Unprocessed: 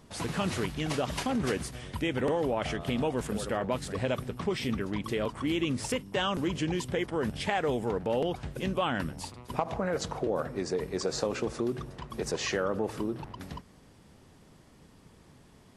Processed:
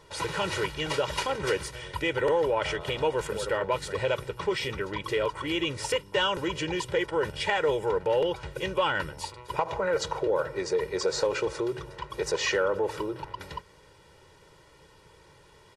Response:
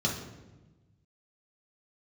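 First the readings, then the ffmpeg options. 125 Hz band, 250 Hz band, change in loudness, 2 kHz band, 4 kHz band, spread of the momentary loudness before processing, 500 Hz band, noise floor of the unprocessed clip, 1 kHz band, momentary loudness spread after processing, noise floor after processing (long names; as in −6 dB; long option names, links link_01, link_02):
−3.5 dB, −4.0 dB, +3.0 dB, +5.5 dB, +5.0 dB, 6 LU, +4.5 dB, −57 dBFS, +4.0 dB, 8 LU, −56 dBFS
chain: -filter_complex "[0:a]aecho=1:1:2.1:0.89,asplit=2[link_01][link_02];[link_02]highpass=frequency=720:poles=1,volume=8dB,asoftclip=type=tanh:threshold=-12.5dB[link_03];[link_01][link_03]amix=inputs=2:normalize=0,lowpass=frequency=4300:poles=1,volume=-6dB"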